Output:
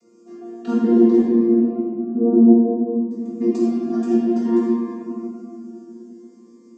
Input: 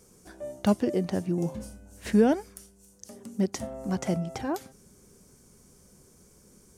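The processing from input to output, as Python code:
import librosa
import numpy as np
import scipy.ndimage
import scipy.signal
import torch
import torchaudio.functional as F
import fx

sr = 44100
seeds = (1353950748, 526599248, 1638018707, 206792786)

y = fx.chord_vocoder(x, sr, chord='bare fifth', root=58)
y = fx.bessel_lowpass(y, sr, hz=640.0, order=8, at=(1.19, 3.11))
y = fx.room_shoebox(y, sr, seeds[0], volume_m3=130.0, walls='hard', distance_m=1.1)
y = fx.notch_cascade(y, sr, direction='rising', hz=0.58)
y = y * librosa.db_to_amplitude(3.0)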